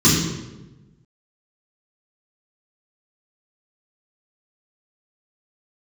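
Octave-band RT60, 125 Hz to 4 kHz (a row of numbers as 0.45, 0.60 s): 1.5, 1.4, 1.2, 0.95, 0.85, 0.75 s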